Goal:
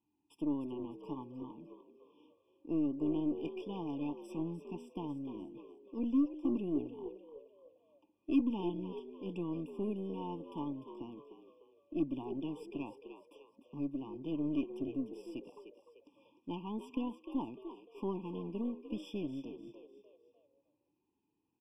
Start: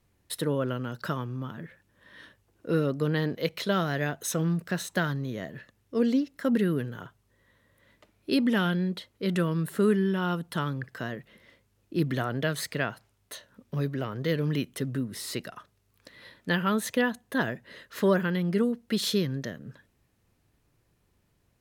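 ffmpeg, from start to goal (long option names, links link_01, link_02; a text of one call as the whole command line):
ffmpeg -i in.wav -filter_complex "[0:a]asplit=3[link_01][link_02][link_03];[link_01]bandpass=frequency=300:width_type=q:width=8,volume=0dB[link_04];[link_02]bandpass=frequency=870:width_type=q:width=8,volume=-6dB[link_05];[link_03]bandpass=frequency=2240:width_type=q:width=8,volume=-9dB[link_06];[link_04][link_05][link_06]amix=inputs=3:normalize=0,highshelf=frequency=6600:gain=7,asplit=5[link_07][link_08][link_09][link_10][link_11];[link_08]adelay=300,afreqshift=70,volume=-10.5dB[link_12];[link_09]adelay=600,afreqshift=140,volume=-18.5dB[link_13];[link_10]adelay=900,afreqshift=210,volume=-26.4dB[link_14];[link_11]adelay=1200,afreqshift=280,volume=-34.4dB[link_15];[link_07][link_12][link_13][link_14][link_15]amix=inputs=5:normalize=0,aeval=exprs='0.0891*(cos(1*acos(clip(val(0)/0.0891,-1,1)))-cos(1*PI/2))+0.00355*(cos(8*acos(clip(val(0)/0.0891,-1,1)))-cos(8*PI/2))':channel_layout=same,afftfilt=real='re*eq(mod(floor(b*sr/1024/1200),2),0)':imag='im*eq(mod(floor(b*sr/1024/1200),2),0)':win_size=1024:overlap=0.75,volume=1dB" out.wav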